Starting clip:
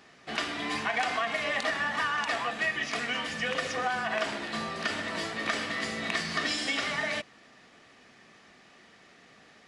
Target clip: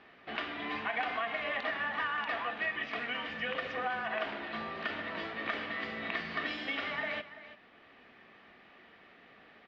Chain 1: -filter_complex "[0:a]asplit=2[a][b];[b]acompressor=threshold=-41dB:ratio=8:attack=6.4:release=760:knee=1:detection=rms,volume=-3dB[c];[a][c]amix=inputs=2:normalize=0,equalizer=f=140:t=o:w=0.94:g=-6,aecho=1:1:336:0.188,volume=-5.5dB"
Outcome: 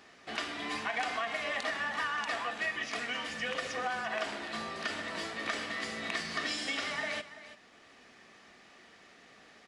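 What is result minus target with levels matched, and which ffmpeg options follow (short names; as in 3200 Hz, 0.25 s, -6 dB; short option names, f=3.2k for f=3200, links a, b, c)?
4000 Hz band +3.0 dB
-filter_complex "[0:a]asplit=2[a][b];[b]acompressor=threshold=-41dB:ratio=8:attack=6.4:release=760:knee=1:detection=rms,volume=-3dB[c];[a][c]amix=inputs=2:normalize=0,lowpass=f=3.3k:w=0.5412,lowpass=f=3.3k:w=1.3066,equalizer=f=140:t=o:w=0.94:g=-6,aecho=1:1:336:0.188,volume=-5.5dB"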